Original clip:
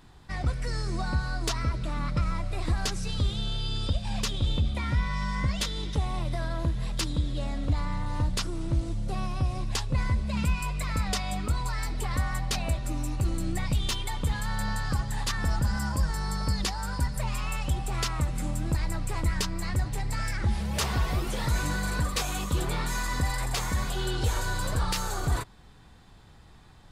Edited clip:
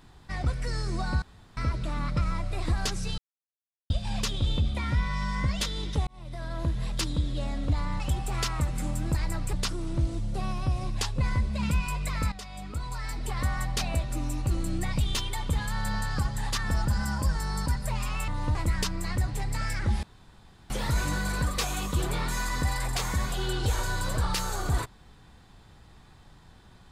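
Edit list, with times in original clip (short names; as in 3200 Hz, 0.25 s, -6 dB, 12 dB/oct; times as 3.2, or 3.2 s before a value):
1.22–1.57 room tone
3.18–3.9 mute
6.07–6.72 fade in
8–8.27 swap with 17.6–19.13
11.06–12.24 fade in, from -15 dB
16.4–16.98 cut
20.61–21.28 room tone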